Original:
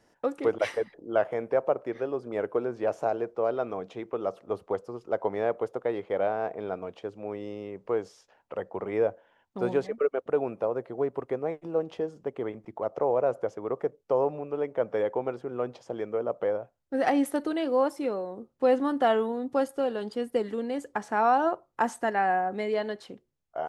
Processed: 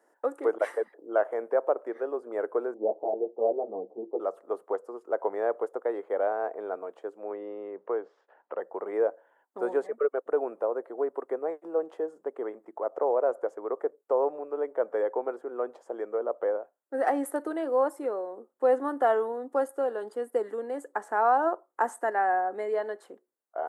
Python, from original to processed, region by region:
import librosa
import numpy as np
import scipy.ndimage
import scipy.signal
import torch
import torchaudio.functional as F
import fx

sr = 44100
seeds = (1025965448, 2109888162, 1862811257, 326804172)

y = fx.chain(x, sr, fx.ellip_lowpass(hz=820.0, order=4, stop_db=60),
    fx.low_shelf(hz=410.0, db=10.0),
    fx.ensemble(), at=(2.74, 4.2))
y = fx.chain(y, sr, fx.lowpass(hz=3700.0, slope=24),
    fx.band_squash(depth_pct=40), at=(7.3, 8.62))
y = scipy.signal.sosfilt(scipy.signal.butter(4, 330.0, 'highpass', fs=sr, output='sos'), y)
y = fx.band_shelf(y, sr, hz=3700.0, db=-13.5, octaves=1.7)